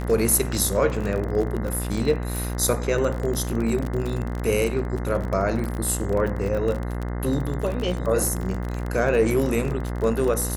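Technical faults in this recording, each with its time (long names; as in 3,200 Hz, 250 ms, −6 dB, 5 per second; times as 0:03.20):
mains buzz 60 Hz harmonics 35 −28 dBFS
surface crackle 38 per second −26 dBFS
0:02.36: click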